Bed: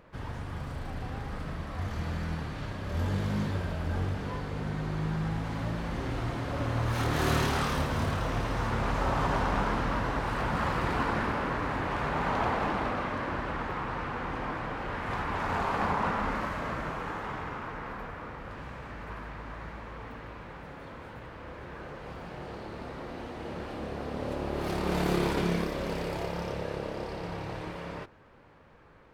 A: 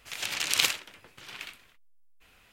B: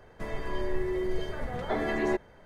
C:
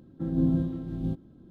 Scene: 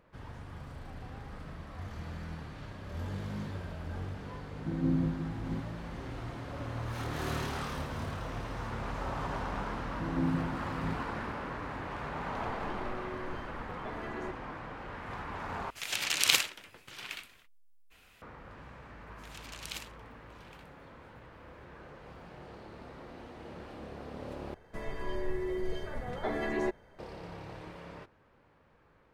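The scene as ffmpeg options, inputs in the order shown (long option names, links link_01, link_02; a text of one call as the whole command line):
ffmpeg -i bed.wav -i cue0.wav -i cue1.wav -i cue2.wav -filter_complex "[3:a]asplit=2[link_01][link_02];[2:a]asplit=2[link_03][link_04];[1:a]asplit=2[link_05][link_06];[0:a]volume=-8dB[link_07];[link_02]highpass=59[link_08];[link_07]asplit=3[link_09][link_10][link_11];[link_09]atrim=end=15.704[link_12];[link_05]atrim=end=2.52,asetpts=PTS-STARTPTS,volume=-0.5dB[link_13];[link_10]atrim=start=18.216:end=24.544[link_14];[link_04]atrim=end=2.45,asetpts=PTS-STARTPTS,volume=-4dB[link_15];[link_11]atrim=start=26.986[link_16];[link_01]atrim=end=1.5,asetpts=PTS-STARTPTS,volume=-5dB,afade=type=in:duration=0.004:curve=hsin,afade=type=out:start_time=1.496:duration=0.004:curve=hsin,adelay=4460[link_17];[link_08]atrim=end=1.5,asetpts=PTS-STARTPTS,volume=-6.5dB,afade=type=in:duration=0.004:curve=hsin,afade=type=out:start_time=1.496:duration=0.004:curve=hsin,adelay=9800[link_18];[link_03]atrim=end=2.45,asetpts=PTS-STARTPTS,volume=-13dB,afade=type=in:duration=0.004:curve=hsin,afade=type=out:start_time=2.446:duration=0.004:curve=hsin,adelay=12150[link_19];[link_06]atrim=end=2.52,asetpts=PTS-STARTPTS,volume=-17.5dB,afade=type=in:duration=0.004:curve=hsin,afade=type=out:start_time=2.516:duration=0.004:curve=hsin,adelay=19120[link_20];[link_12][link_13]acrossfade=duration=0.004:curve1=hsin:curve2=hsin[link_21];[link_21][link_14]acrossfade=duration=0.004:curve1=hsin:curve2=hsin[link_22];[link_22][link_15]acrossfade=duration=0.004:curve1=hsin:curve2=hsin[link_23];[link_23][link_16]acrossfade=duration=0.004:curve1=hsin:curve2=hsin[link_24];[link_24][link_17][link_18][link_19][link_20]amix=inputs=5:normalize=0" out.wav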